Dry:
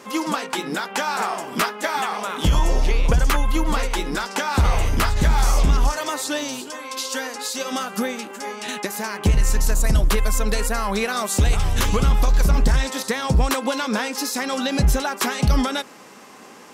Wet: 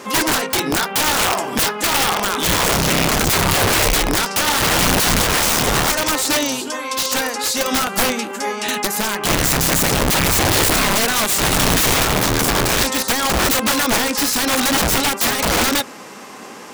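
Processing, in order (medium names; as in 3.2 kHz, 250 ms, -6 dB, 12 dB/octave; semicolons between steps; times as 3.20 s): de-hum 82.84 Hz, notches 3; integer overflow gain 19 dB; trim +8 dB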